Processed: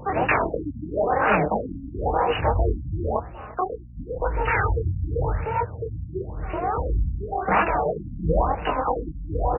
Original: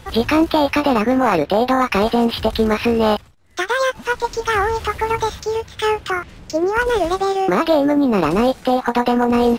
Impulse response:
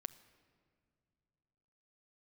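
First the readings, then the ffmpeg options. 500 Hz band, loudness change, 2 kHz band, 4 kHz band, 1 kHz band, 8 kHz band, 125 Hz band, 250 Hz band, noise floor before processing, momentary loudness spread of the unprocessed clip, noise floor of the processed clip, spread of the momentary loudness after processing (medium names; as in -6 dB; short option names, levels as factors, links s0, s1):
-8.5 dB, -7.0 dB, -5.5 dB, -15.5 dB, -5.0 dB, under -40 dB, +4.0 dB, -14.0 dB, -42 dBFS, 6 LU, -39 dBFS, 10 LU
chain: -filter_complex "[0:a]highpass=47,bandreject=f=60:t=h:w=6,bandreject=f=120:t=h:w=6,bandreject=f=180:t=h:w=6,afftfilt=real='re*lt(hypot(re,im),0.631)':imag='im*lt(hypot(re,im),0.631)':win_size=1024:overlap=0.75,equalizer=f=510:w=0.86:g=5.5,aecho=1:1:6.6:0.4,afreqshift=15,asubboost=boost=11:cutoff=66,asoftclip=type=tanh:threshold=0.211,flanger=delay=19:depth=7.9:speed=3,aeval=exprs='val(0)+0.00355*(sin(2*PI*60*n/s)+sin(2*PI*2*60*n/s)/2+sin(2*PI*3*60*n/s)/3+sin(2*PI*4*60*n/s)/4+sin(2*PI*5*60*n/s)/5)':c=same,asplit=2[s0][s1];[s1]adelay=348,lowpass=f=3400:p=1,volume=0.112,asplit=2[s2][s3];[s3]adelay=348,lowpass=f=3400:p=1,volume=0.29[s4];[s2][s4]amix=inputs=2:normalize=0[s5];[s0][s5]amix=inputs=2:normalize=0,afftfilt=real='re*lt(b*sr/1024,280*pow(3000/280,0.5+0.5*sin(2*PI*0.95*pts/sr)))':imag='im*lt(b*sr/1024,280*pow(3000/280,0.5+0.5*sin(2*PI*0.95*pts/sr)))':win_size=1024:overlap=0.75,volume=1.88"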